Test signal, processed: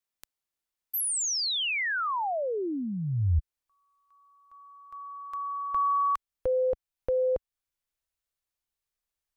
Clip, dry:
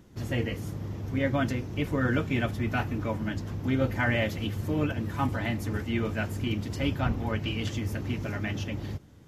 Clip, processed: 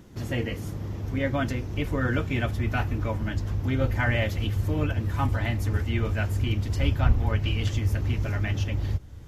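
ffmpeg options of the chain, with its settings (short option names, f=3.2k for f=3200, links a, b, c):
-filter_complex "[0:a]asplit=2[a][b];[b]acompressor=threshold=-42dB:ratio=6,volume=-2dB[c];[a][c]amix=inputs=2:normalize=0,asubboost=boost=6.5:cutoff=76"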